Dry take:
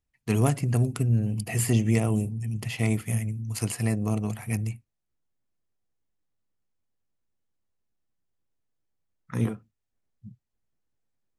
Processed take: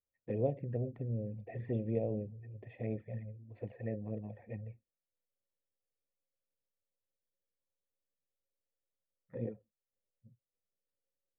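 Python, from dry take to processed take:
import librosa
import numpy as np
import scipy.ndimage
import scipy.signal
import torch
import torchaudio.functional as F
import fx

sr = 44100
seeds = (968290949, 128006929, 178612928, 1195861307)

y = fx.env_flanger(x, sr, rest_ms=11.0, full_db=-19.5)
y = fx.formant_cascade(y, sr, vowel='e')
y = fx.band_shelf(y, sr, hz=1800.0, db=-11.5, octaves=1.7)
y = y * 10.0 ** (5.5 / 20.0)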